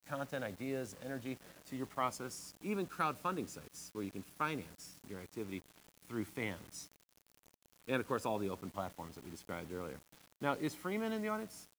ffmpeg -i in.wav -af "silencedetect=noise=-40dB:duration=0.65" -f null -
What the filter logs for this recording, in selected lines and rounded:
silence_start: 6.80
silence_end: 7.89 | silence_duration: 1.09